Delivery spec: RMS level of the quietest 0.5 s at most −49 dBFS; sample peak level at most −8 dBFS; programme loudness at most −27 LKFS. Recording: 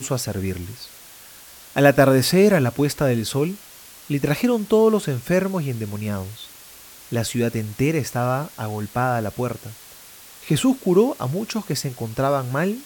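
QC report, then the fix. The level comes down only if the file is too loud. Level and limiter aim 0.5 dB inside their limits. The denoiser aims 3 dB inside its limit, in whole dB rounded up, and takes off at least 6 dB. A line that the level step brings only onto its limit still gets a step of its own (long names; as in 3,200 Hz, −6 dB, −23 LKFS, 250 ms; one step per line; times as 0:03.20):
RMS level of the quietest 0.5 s −44 dBFS: out of spec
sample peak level −3.0 dBFS: out of spec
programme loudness −21.5 LKFS: out of spec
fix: level −6 dB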